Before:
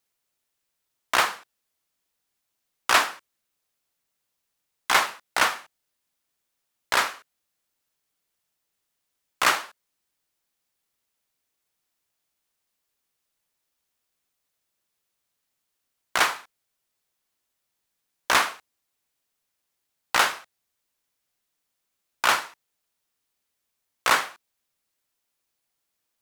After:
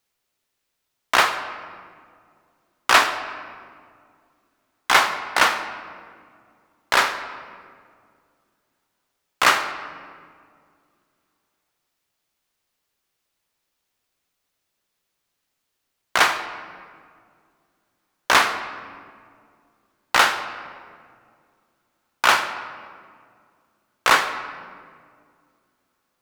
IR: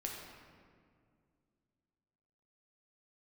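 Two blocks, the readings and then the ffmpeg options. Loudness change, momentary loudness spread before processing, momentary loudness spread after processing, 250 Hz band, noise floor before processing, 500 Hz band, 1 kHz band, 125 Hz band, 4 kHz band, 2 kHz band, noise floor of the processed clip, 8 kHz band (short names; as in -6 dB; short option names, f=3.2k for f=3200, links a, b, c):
+3.5 dB, 17 LU, 20 LU, +5.5 dB, -80 dBFS, +5.0 dB, +5.0 dB, +5.5 dB, +4.0 dB, +5.0 dB, -78 dBFS, +1.5 dB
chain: -filter_complex "[0:a]asplit=2[a][b];[1:a]atrim=start_sample=2205,lowpass=7k[c];[b][c]afir=irnorm=-1:irlink=0,volume=-2.5dB[d];[a][d]amix=inputs=2:normalize=0,volume=1dB"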